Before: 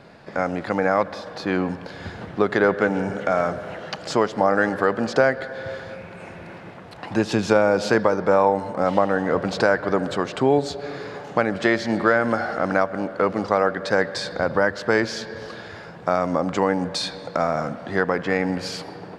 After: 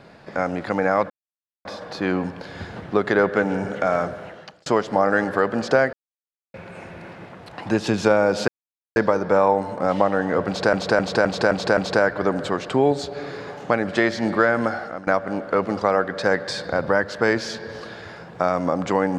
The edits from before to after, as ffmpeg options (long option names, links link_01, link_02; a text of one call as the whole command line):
ffmpeg -i in.wav -filter_complex "[0:a]asplit=12[link_01][link_02][link_03][link_04][link_05][link_06][link_07][link_08][link_09][link_10][link_11][link_12];[link_01]atrim=end=1.1,asetpts=PTS-STARTPTS,afade=type=out:start_time=1.096:duration=0.004:curve=hsin,apad=pad_dur=0.55[link_13];[link_02]atrim=start=1.1:end=4.11,asetpts=PTS-STARTPTS,afade=type=in:duration=0.004:curve=hsin,afade=type=out:start_time=2.39:duration=0.62[link_14];[link_03]atrim=start=4.11:end=5.38,asetpts=PTS-STARTPTS,afade=type=in:duration=0.004:curve=hsin,afade=type=out:start_time=1.266:duration=0.004:curve=hsin[link_15];[link_04]atrim=start=5.38:end=5.99,asetpts=PTS-STARTPTS,volume=0[link_16];[link_05]atrim=start=5.99:end=7.93,asetpts=PTS-STARTPTS,afade=type=in:duration=0.004:curve=hsin,afade=type=out:start_time=1.936:duration=0.004:curve=hsin,apad=pad_dur=0.48[link_17];[link_06]atrim=start=7.93:end=9.702,asetpts=PTS-STARTPTS,afade=type=in:duration=0.004:curve=hsin[link_18];[link_07]atrim=start=9.438:end=9.702[link_19];[link_08]atrim=start=9.438:end=9.702[link_20];[link_09]atrim=start=9.438:end=9.702[link_21];[link_10]atrim=start=9.438:end=9.702[link_22];[link_11]atrim=start=9.438:end=12.74,asetpts=PTS-STARTPTS,afade=type=out:start_time=2.862:duration=0.44:silence=0.112202[link_23];[link_12]atrim=start=12.74,asetpts=PTS-STARTPTS,afade=type=in:duration=0.004:curve=hsin:silence=0.112202[link_24];[link_13][link_14][link_15][link_16][link_17][link_18]concat=n=6:v=0:a=1[link_25];[link_25][link_19]acrossfade=duration=0.004:curve1=hsin:curve2=hsin[link_26];[link_26][link_20]acrossfade=duration=0.004:curve1=hsin:curve2=hsin[link_27];[link_27][link_21]acrossfade=duration=0.004:curve1=hsin:curve2=hsin[link_28];[link_28][link_22]acrossfade=duration=0.004:curve1=hsin:curve2=hsin[link_29];[link_23][link_24]concat=n=2:v=0:a=1[link_30];[link_29][link_30]acrossfade=duration=0.004:curve1=hsin:curve2=hsin" out.wav